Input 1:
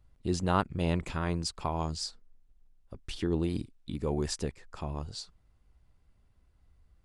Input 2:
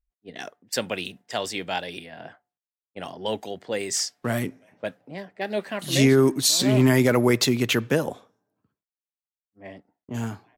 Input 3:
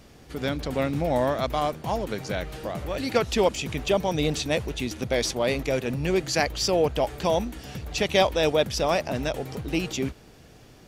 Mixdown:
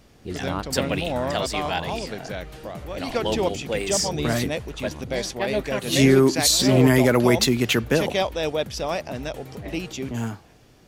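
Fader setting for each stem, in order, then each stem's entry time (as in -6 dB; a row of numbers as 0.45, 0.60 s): -3.0, +1.5, -3.0 dB; 0.00, 0.00, 0.00 s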